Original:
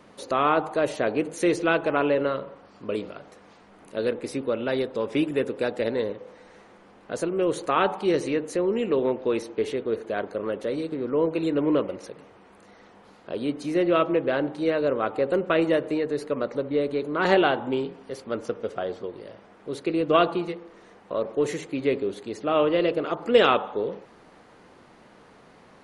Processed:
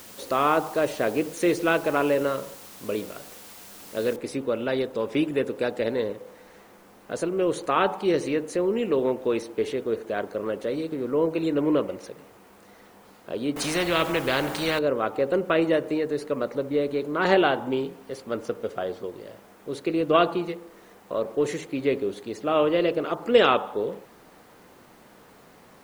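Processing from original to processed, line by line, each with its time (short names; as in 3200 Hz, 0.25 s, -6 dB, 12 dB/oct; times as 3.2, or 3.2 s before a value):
4.16 noise floor step -46 dB -63 dB
13.56–14.79 spectral compressor 2:1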